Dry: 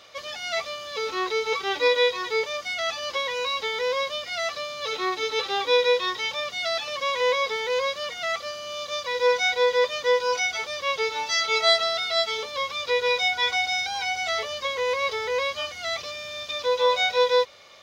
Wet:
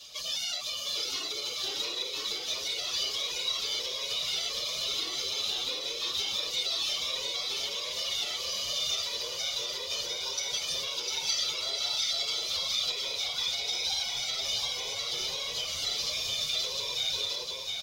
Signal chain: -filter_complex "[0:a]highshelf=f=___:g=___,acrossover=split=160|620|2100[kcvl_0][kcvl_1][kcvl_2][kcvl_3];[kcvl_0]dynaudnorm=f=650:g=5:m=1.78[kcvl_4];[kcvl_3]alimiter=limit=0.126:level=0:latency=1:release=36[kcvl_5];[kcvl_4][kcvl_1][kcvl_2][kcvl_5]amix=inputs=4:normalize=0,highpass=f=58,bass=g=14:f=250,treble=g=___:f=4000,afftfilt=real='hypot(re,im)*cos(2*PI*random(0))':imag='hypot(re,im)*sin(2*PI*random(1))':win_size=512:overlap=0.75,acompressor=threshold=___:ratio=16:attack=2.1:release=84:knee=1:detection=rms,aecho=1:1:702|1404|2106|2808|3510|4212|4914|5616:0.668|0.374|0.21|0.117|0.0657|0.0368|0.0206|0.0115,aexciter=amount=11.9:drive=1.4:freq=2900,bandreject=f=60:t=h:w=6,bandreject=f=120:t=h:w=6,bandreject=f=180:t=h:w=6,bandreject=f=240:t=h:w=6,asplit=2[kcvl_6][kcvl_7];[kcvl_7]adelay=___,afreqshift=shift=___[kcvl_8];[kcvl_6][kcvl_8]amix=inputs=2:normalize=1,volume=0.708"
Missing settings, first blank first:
4000, 8.5, -8, 0.02, 6.8, 2.2